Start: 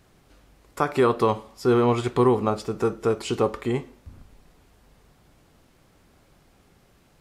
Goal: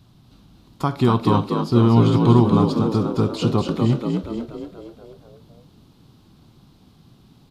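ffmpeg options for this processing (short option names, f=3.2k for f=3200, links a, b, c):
-filter_complex "[0:a]equalizer=f=125:t=o:w=1:g=11,equalizer=f=250:t=o:w=1:g=7,equalizer=f=500:t=o:w=1:g=-8,equalizer=f=1k:t=o:w=1:g=4,equalizer=f=2k:t=o:w=1:g=-10,equalizer=f=4k:t=o:w=1:g=10,equalizer=f=8k:t=o:w=1:g=-6,asplit=8[a][b][c][d][e][f][g][h];[b]adelay=230,afreqshift=53,volume=-5dB[i];[c]adelay=460,afreqshift=106,volume=-10.4dB[j];[d]adelay=690,afreqshift=159,volume=-15.7dB[k];[e]adelay=920,afreqshift=212,volume=-21.1dB[l];[f]adelay=1150,afreqshift=265,volume=-26.4dB[m];[g]adelay=1380,afreqshift=318,volume=-31.8dB[n];[h]adelay=1610,afreqshift=371,volume=-37.1dB[o];[a][i][j][k][l][m][n][o]amix=inputs=8:normalize=0,asetrate=42336,aresample=44100"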